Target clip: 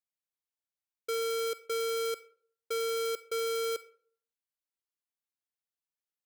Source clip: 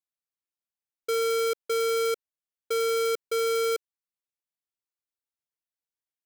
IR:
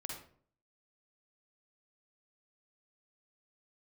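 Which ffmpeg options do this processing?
-filter_complex "[0:a]asplit=2[s0][s1];[s1]highpass=590[s2];[1:a]atrim=start_sample=2205[s3];[s2][s3]afir=irnorm=-1:irlink=0,volume=0.335[s4];[s0][s4]amix=inputs=2:normalize=0,volume=0.501"

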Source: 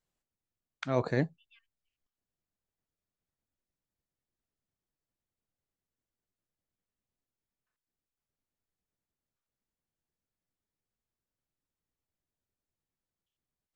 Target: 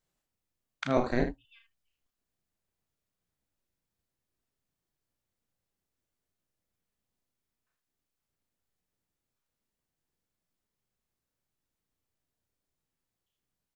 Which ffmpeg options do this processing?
-filter_complex "[0:a]aecho=1:1:34|78:0.596|0.316,asettb=1/sr,asplit=3[s0][s1][s2];[s0]atrim=end=0.974[s3];[s1]atrim=start=0.97:end=1.45,asetpts=PTS-STARTPTS,afade=t=in:d=0.004:c=qsin,afade=t=out:st=0.476:d=0.004:c=qsin,aeval=exprs='val(0)*sin(2*PI*120*n/s)':c=same[s4];[s2]atrim=start=1.446[s5];[s3][s4]acrossfade=d=0.004:c1=hsin:c2=qsin[s6];[s6][s5]acrossfade=d=0.004:c1=qsin:c2=hsin,volume=1.33"

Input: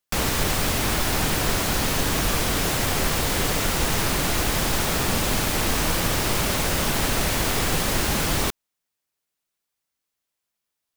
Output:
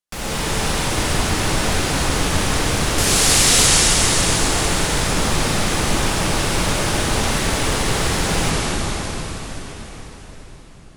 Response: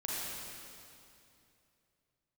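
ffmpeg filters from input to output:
-filter_complex "[0:a]asettb=1/sr,asplit=3[s0][s1][s2];[s0]atrim=end=2.984[s3];[s1]atrim=start=2.98:end=3.67,asetpts=PTS-STARTPTS,afade=t=in:d=0.004:c=qsin,afade=t=out:st=0.686:d=0.004:c=qsin,equalizer=f=7800:t=o:w=2.8:g=14.5[s4];[s2]atrim=start=3.666[s5];[s3][s4]acrossfade=d=0.004:c1=hsin:c2=qsin[s6];[s6][s5]acrossfade=d=0.004:c1=qsin:c2=hsin[s7];[1:a]atrim=start_sample=2205,asetrate=22491,aresample=44100[s8];[s7][s8]afir=irnorm=-1:irlink=0,volume=0.531"

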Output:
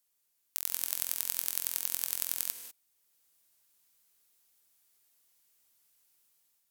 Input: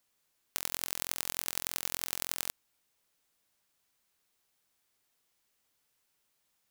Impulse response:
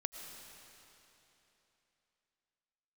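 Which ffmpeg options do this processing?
-filter_complex "[0:a]dynaudnorm=f=200:g=5:m=2.11,crystalizer=i=2:c=0[s0];[1:a]atrim=start_sample=2205,afade=t=out:st=0.2:d=0.01,atrim=end_sample=9261,asetrate=32634,aresample=44100[s1];[s0][s1]afir=irnorm=-1:irlink=0,volume=0.355"

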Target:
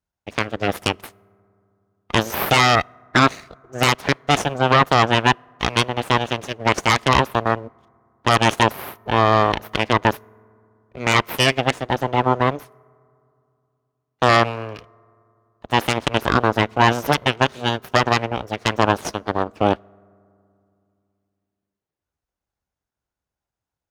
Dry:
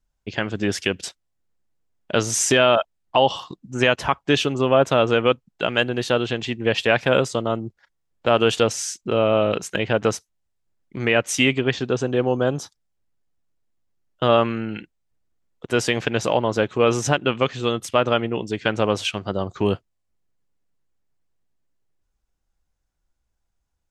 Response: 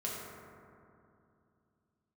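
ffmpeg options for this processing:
-filter_complex "[0:a]aeval=exprs='abs(val(0))':c=same,asplit=2[s0][s1];[1:a]atrim=start_sample=2205[s2];[s1][s2]afir=irnorm=-1:irlink=0,volume=0.0708[s3];[s0][s3]amix=inputs=2:normalize=0,aeval=exprs='0.794*(cos(1*acos(clip(val(0)/0.794,-1,1)))-cos(1*PI/2))+0.224*(cos(5*acos(clip(val(0)/0.794,-1,1)))-cos(5*PI/2))+0.316*(cos(6*acos(clip(val(0)/0.794,-1,1)))-cos(6*PI/2))+0.178*(cos(7*acos(clip(val(0)/0.794,-1,1)))-cos(7*PI/2))+0.112*(cos(8*acos(clip(val(0)/0.794,-1,1)))-cos(8*PI/2))':c=same,highpass=53,equalizer=f=740:w=0.36:g=6,bandreject=f=7600:w=15,volume=0.501"

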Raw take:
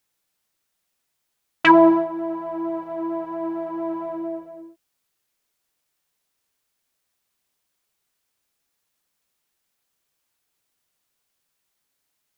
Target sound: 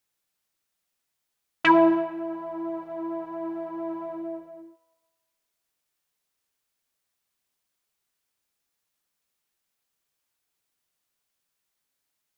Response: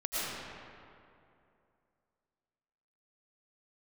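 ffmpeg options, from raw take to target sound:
-filter_complex "[0:a]asplit=2[s0][s1];[s1]highpass=730[s2];[1:a]atrim=start_sample=2205,asetrate=83790,aresample=44100[s3];[s2][s3]afir=irnorm=-1:irlink=0,volume=0.178[s4];[s0][s4]amix=inputs=2:normalize=0,volume=0.562"

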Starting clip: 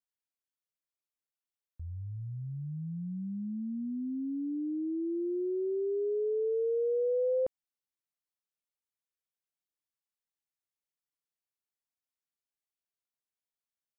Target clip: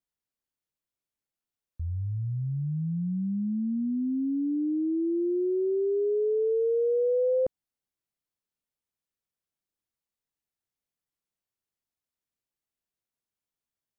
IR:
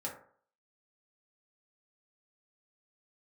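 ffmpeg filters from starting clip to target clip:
-af "lowshelf=f=480:g=9"

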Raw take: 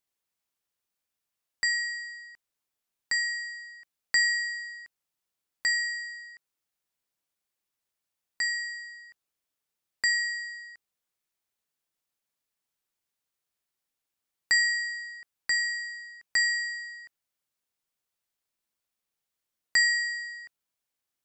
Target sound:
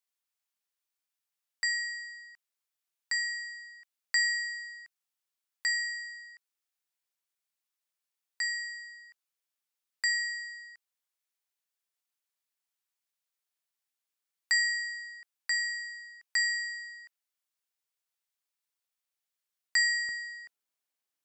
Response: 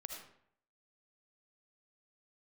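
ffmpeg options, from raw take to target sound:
-af "asetnsamples=n=441:p=0,asendcmd='20.09 highpass f 260',highpass=f=1000:p=1,volume=0.75"

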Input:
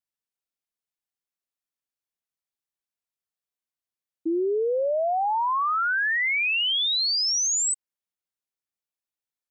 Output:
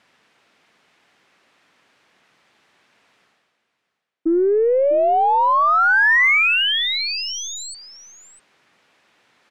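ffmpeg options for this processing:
-af "highpass=160,lowpass=6800,equalizer=f=2000:w=1.3:g=2.5,areverse,acompressor=mode=upward:threshold=0.01:ratio=2.5,areverse,aeval=exprs='0.126*(cos(1*acos(clip(val(0)/0.126,-1,1)))-cos(1*PI/2))+0.00794*(cos(3*acos(clip(val(0)/0.126,-1,1)))-cos(3*PI/2))+0.00251*(cos(5*acos(clip(val(0)/0.126,-1,1)))-cos(5*PI/2))+0.00178*(cos(6*acos(clip(val(0)/0.126,-1,1)))-cos(6*PI/2))':c=same,bass=f=250:g=1,treble=f=4000:g=-14,aecho=1:1:650:0.188,volume=2.66"

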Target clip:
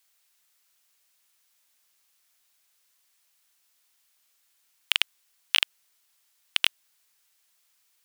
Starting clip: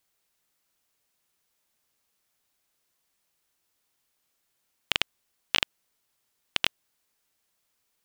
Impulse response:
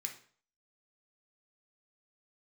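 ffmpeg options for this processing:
-af "acontrast=77,tiltshelf=f=690:g=-8.5,volume=0.398"

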